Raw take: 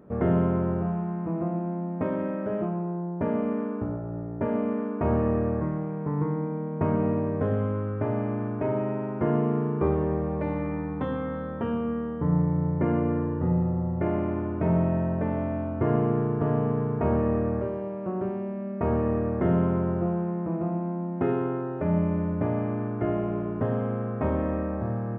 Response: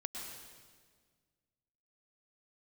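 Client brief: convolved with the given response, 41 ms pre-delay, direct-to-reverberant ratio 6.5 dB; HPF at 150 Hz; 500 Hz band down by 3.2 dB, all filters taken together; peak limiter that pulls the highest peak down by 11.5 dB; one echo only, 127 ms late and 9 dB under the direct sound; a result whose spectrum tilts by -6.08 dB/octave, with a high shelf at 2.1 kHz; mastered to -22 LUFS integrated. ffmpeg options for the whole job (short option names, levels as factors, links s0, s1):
-filter_complex "[0:a]highpass=150,equalizer=f=500:t=o:g=-3.5,highshelf=f=2100:g=-7.5,alimiter=level_in=1.26:limit=0.0631:level=0:latency=1,volume=0.794,aecho=1:1:127:0.355,asplit=2[s0][s1];[1:a]atrim=start_sample=2205,adelay=41[s2];[s1][s2]afir=irnorm=-1:irlink=0,volume=0.501[s3];[s0][s3]amix=inputs=2:normalize=0,volume=2.99"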